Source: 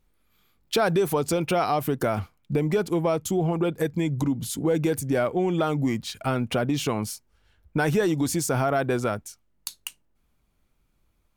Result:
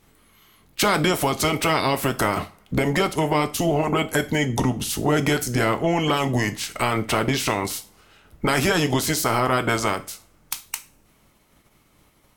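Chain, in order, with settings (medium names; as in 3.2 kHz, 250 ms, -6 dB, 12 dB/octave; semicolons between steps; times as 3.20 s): spectral peaks clipped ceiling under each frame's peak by 18 dB; in parallel at +3 dB: compression, threshold -34 dBFS, peak gain reduction 15 dB; on the sum: speed mistake 48 kHz file played as 44.1 kHz; two-slope reverb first 0.34 s, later 1.8 s, from -28 dB, DRR 9 dB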